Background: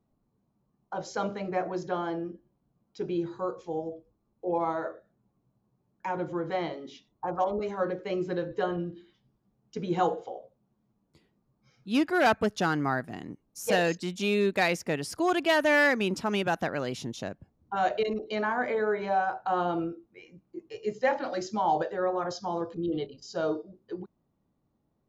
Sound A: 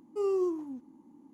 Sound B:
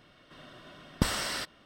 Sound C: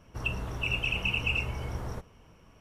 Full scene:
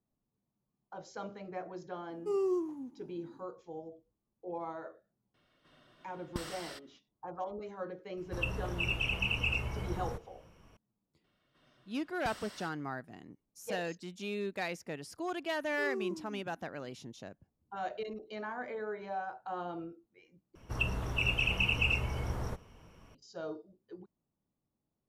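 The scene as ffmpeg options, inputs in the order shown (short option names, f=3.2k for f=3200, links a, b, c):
-filter_complex "[1:a]asplit=2[a][b];[2:a]asplit=2[c][d];[3:a]asplit=2[e][f];[0:a]volume=-11.5dB,asplit=2[g][h];[g]atrim=end=20.554[i];[f]atrim=end=2.6,asetpts=PTS-STARTPTS,volume=-0.5dB[j];[h]atrim=start=23.146[k];[a]atrim=end=1.33,asetpts=PTS-STARTPTS,volume=-2.5dB,afade=t=in:d=0.004:c=hsin,afade=t=out:st=1.326:d=0.004:c=hsin,adelay=2100[l];[c]atrim=end=1.65,asetpts=PTS-STARTPTS,volume=-13dB,afade=t=in:d=0.004:c=hsin,afade=t=out:st=1.646:d=0.004:c=hsin,adelay=5340[m];[e]atrim=end=2.6,asetpts=PTS-STARTPTS,volume=-3dB,afade=t=in:d=0.004:c=hsin,afade=t=out:st=2.596:d=0.004:c=hsin,adelay=8170[n];[d]atrim=end=1.65,asetpts=PTS-STARTPTS,volume=-17.5dB,afade=t=in:d=0.004:c=hsin,afade=t=out:st=1.646:d=0.004:c=hsin,adelay=11240[o];[b]atrim=end=1.33,asetpts=PTS-STARTPTS,volume=-9.5dB,afade=t=in:d=0.004:c=hsin,afade=t=out:st=1.326:d=0.004:c=hsin,adelay=15620[p];[i][j]acrossfade=d=0.004:c1=hsin:c2=hsin[q];[q][k]acrossfade=d=0.004:c1=hsin:c2=hsin[r];[r][l][m][n][o][p]amix=inputs=6:normalize=0"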